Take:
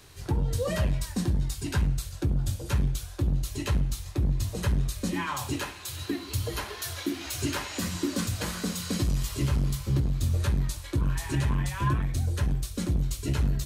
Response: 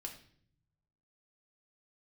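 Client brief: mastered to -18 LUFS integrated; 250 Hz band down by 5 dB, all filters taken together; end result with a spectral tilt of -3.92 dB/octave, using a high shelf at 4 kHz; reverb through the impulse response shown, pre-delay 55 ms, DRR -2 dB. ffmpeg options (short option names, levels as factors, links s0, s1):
-filter_complex "[0:a]equalizer=f=250:t=o:g=-8,highshelf=f=4000:g=6,asplit=2[s0][s1];[1:a]atrim=start_sample=2205,adelay=55[s2];[s1][s2]afir=irnorm=-1:irlink=0,volume=1.78[s3];[s0][s3]amix=inputs=2:normalize=0,volume=2.51"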